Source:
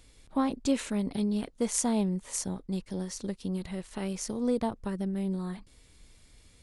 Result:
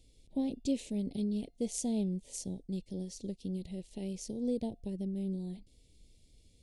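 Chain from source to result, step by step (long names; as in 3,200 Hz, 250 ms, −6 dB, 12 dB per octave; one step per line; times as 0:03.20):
Butterworth band-reject 1,300 Hz, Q 0.52
high-shelf EQ 6,200 Hz −7 dB
tuned comb filter 700 Hz, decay 0.47 s, mix 40%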